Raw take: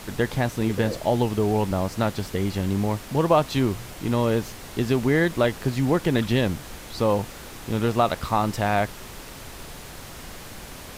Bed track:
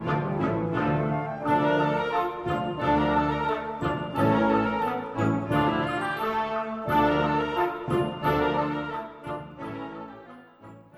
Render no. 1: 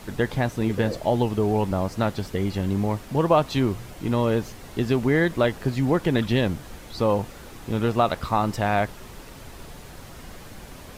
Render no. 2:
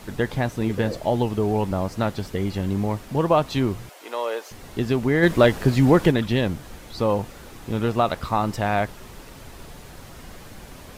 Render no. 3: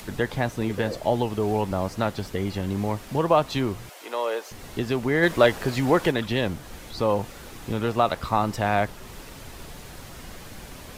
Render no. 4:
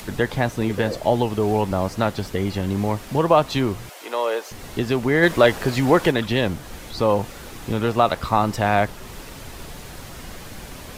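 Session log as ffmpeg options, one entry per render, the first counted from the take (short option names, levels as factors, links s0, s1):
-af "afftdn=nr=6:nf=-41"
-filter_complex "[0:a]asettb=1/sr,asplit=3[s0][s1][s2];[s0]atrim=end=3.894[s3];[s1]atrim=start=3.89:end=4.51,asetpts=PTS-STARTPTS,afade=t=in:d=0.004:c=qsin,afade=t=out:st=0.616:d=0.004:c=qsin,highpass=f=480:w=0.5412,highpass=f=480:w=1.3066[s4];[s2]atrim=start=4.506[s5];[s3][s4]acrossfade=d=0.004:c1=hsin:c2=qsin[s6];[s6][s5]acrossfade=d=0.004:c1=qsin:c2=hsin,asplit=3[s7][s8][s9];[s7]afade=t=out:st=5.22:d=0.02[s10];[s8]acontrast=66,afade=t=in:st=5.22:d=0.02,afade=t=out:st=6.1:d=0.02[s11];[s9]afade=t=in:st=6.1:d=0.02[s12];[s10][s11][s12]amix=inputs=3:normalize=0"
-filter_complex "[0:a]acrossover=split=410|1700[s0][s1][s2];[s0]alimiter=limit=0.106:level=0:latency=1:release=483[s3];[s2]acompressor=mode=upward:threshold=0.00794:ratio=2.5[s4];[s3][s1][s4]amix=inputs=3:normalize=0"
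-af "volume=1.58,alimiter=limit=0.708:level=0:latency=1"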